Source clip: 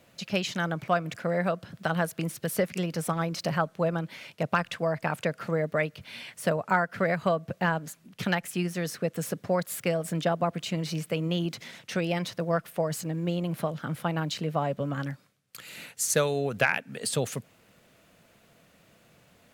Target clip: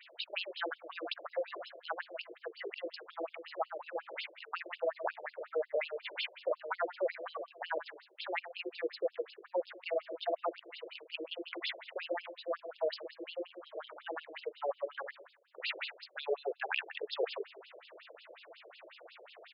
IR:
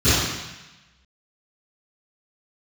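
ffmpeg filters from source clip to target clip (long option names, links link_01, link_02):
-filter_complex "[0:a]lowshelf=frequency=240:gain=5.5,bandreject=frequency=50:width_type=h:width=6,bandreject=frequency=100:width_type=h:width=6,bandreject=frequency=150:width_type=h:width=6,bandreject=frequency=200:width_type=h:width=6,bandreject=frequency=250:width_type=h:width=6,bandreject=frequency=300:width_type=h:width=6,bandreject=frequency=350:width_type=h:width=6,bandreject=frequency=400:width_type=h:width=6,bandreject=frequency=450:width_type=h:width=6,areverse,acompressor=threshold=-38dB:ratio=10,areverse,asplit=2[link_01][link_02];[link_02]adelay=125,lowpass=frequency=3300:poles=1,volume=-11dB,asplit=2[link_03][link_04];[link_04]adelay=125,lowpass=frequency=3300:poles=1,volume=0.22,asplit=2[link_05][link_06];[link_06]adelay=125,lowpass=frequency=3300:poles=1,volume=0.22[link_07];[link_01][link_03][link_05][link_07]amix=inputs=4:normalize=0,afftfilt=real='re*between(b*sr/1024,440*pow(3800/440,0.5+0.5*sin(2*PI*5.5*pts/sr))/1.41,440*pow(3800/440,0.5+0.5*sin(2*PI*5.5*pts/sr))*1.41)':imag='im*between(b*sr/1024,440*pow(3800/440,0.5+0.5*sin(2*PI*5.5*pts/sr))/1.41,440*pow(3800/440,0.5+0.5*sin(2*PI*5.5*pts/sr))*1.41)':win_size=1024:overlap=0.75,volume=13dB"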